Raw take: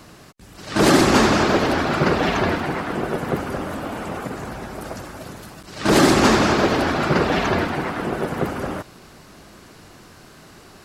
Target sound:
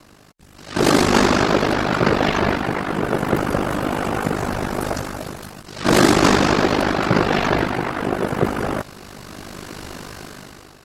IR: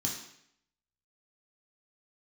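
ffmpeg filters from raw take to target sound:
-af "aeval=exprs='val(0)*sin(2*PI*25*n/s)':channel_layout=same,dynaudnorm=framelen=330:gausssize=5:maxgain=16dB,volume=-1dB"

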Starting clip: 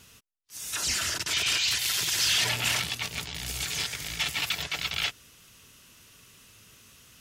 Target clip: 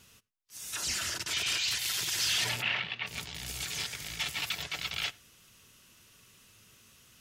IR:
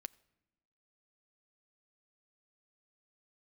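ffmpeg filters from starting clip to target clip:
-filter_complex "[0:a]asplit=3[link_01][link_02][link_03];[link_01]afade=type=out:start_time=2.61:duration=0.02[link_04];[link_02]highpass=140,equalizer=frequency=280:width_type=q:width=4:gain=-8,equalizer=frequency=1900:width_type=q:width=4:gain=4,equalizer=frequency=2700:width_type=q:width=4:gain=4,lowpass=frequency=3400:width=0.5412,lowpass=frequency=3400:width=1.3066,afade=type=in:start_time=2.61:duration=0.02,afade=type=out:start_time=3.06:duration=0.02[link_05];[link_03]afade=type=in:start_time=3.06:duration=0.02[link_06];[link_04][link_05][link_06]amix=inputs=3:normalize=0[link_07];[1:a]atrim=start_sample=2205,afade=type=out:start_time=0.16:duration=0.01,atrim=end_sample=7497[link_08];[link_07][link_08]afir=irnorm=-1:irlink=0"

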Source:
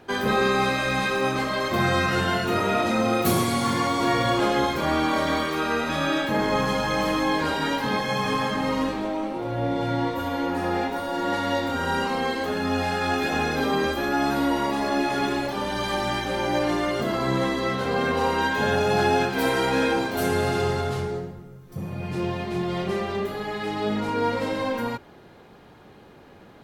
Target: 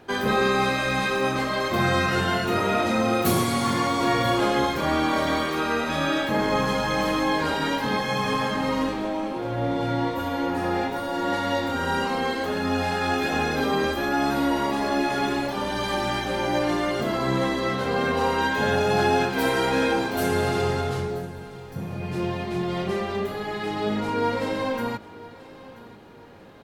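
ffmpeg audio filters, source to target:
ffmpeg -i in.wav -af "aecho=1:1:984|1968|2952:0.112|0.0393|0.0137" out.wav

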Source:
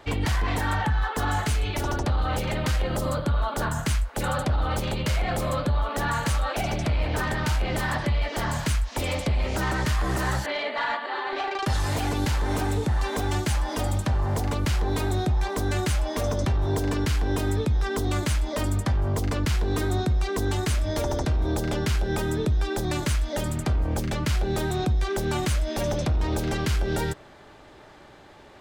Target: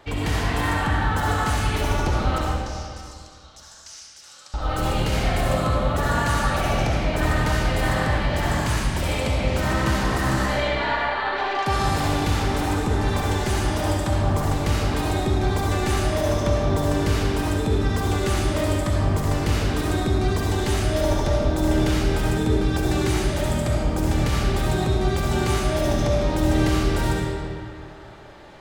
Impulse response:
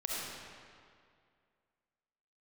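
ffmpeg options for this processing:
-filter_complex "[0:a]asettb=1/sr,asplit=3[link_01][link_02][link_03];[link_01]atrim=end=2.384[link_04];[link_02]atrim=start=2.38:end=4.54,asetpts=PTS-STARTPTS,afade=type=in:duration=0.004:curve=qsin,afade=type=out:start_time=2.156:duration=0.004:curve=qsin,bandpass=frequency=5600:width_type=q:width=4.3:csg=0[link_05];[link_03]atrim=start=4.536[link_06];[link_04][link_05]acrossfade=duration=0.004:curve1=hsin:curve2=qsin[link_07];[link_07][link_06]acrossfade=duration=0.004:curve1=qsin:curve2=hsin[link_08];[1:a]atrim=start_sample=2205[link_09];[link_08][link_09]afir=irnorm=-1:irlink=0"

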